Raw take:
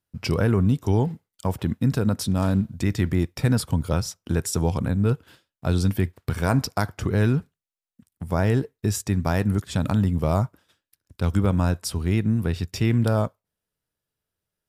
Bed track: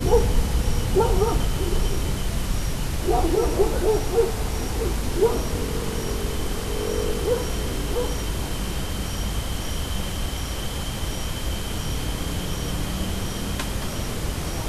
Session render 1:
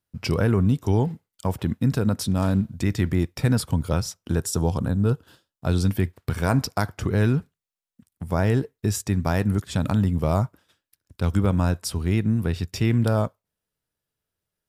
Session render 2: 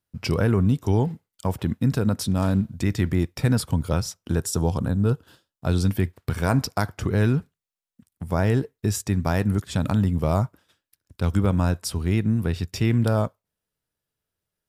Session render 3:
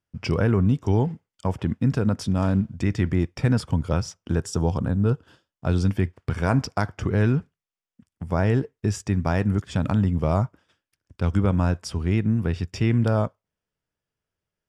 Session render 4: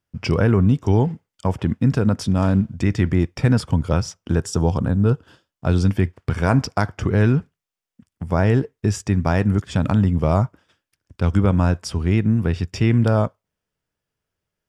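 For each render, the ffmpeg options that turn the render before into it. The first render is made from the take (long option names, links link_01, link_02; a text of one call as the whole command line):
ffmpeg -i in.wav -filter_complex "[0:a]asettb=1/sr,asplit=3[link_01][link_02][link_03];[link_01]atrim=end=4.364[link_04];[link_02]atrim=start=4.36:end=5.66,asetpts=PTS-STARTPTS,afade=type=in:duration=0.004:curve=qsin,afade=type=out:start_time=1.296:duration=0.004:curve=qsin,equalizer=frequency=2200:width=3.5:gain=-11[link_05];[link_03]atrim=start=5.656[link_06];[link_04][link_05]acrossfade=duration=0.004:curve1=hsin:curve2=qsin[link_07];[link_07][link_06]acrossfade=duration=0.004:curve1=qsin:curve2=hsin" out.wav
ffmpeg -i in.wav -af anull out.wav
ffmpeg -i in.wav -af "lowpass=5700,equalizer=frequency=4000:width=6.1:gain=-10.5" out.wav
ffmpeg -i in.wav -af "volume=4dB" out.wav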